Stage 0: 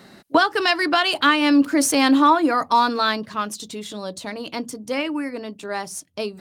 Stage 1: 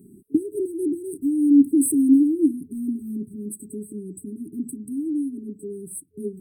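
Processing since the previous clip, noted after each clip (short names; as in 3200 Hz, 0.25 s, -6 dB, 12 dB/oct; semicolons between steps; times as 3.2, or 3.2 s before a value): FFT band-reject 430–7900 Hz; bell 260 Hz +2 dB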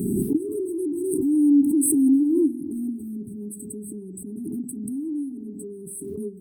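spring tank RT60 1.6 s, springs 48 ms, DRR 15.5 dB; backwards sustainer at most 22 dB/s; gain -3.5 dB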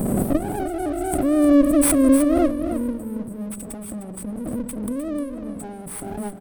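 minimum comb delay 0.88 ms; echo 0.306 s -10 dB; gain +4 dB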